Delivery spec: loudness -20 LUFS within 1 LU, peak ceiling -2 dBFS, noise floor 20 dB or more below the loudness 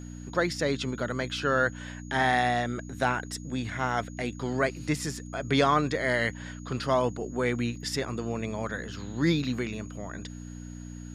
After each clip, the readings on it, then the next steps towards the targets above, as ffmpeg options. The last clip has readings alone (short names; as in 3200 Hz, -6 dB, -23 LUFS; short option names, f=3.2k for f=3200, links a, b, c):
hum 60 Hz; harmonics up to 300 Hz; hum level -38 dBFS; steady tone 6700 Hz; tone level -53 dBFS; loudness -29.0 LUFS; peak -9.5 dBFS; loudness target -20.0 LUFS
-> -af "bandreject=f=60:t=h:w=4,bandreject=f=120:t=h:w=4,bandreject=f=180:t=h:w=4,bandreject=f=240:t=h:w=4,bandreject=f=300:t=h:w=4"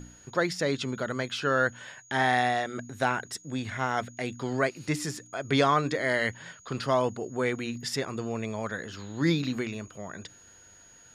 hum none; steady tone 6700 Hz; tone level -53 dBFS
-> -af "bandreject=f=6.7k:w=30"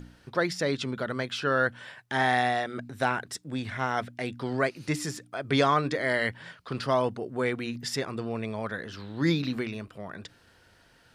steady tone none; loudness -29.0 LUFS; peak -9.5 dBFS; loudness target -20.0 LUFS
-> -af "volume=9dB,alimiter=limit=-2dB:level=0:latency=1"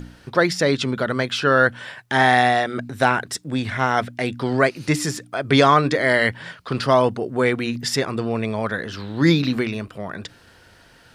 loudness -20.5 LUFS; peak -2.0 dBFS; noise floor -51 dBFS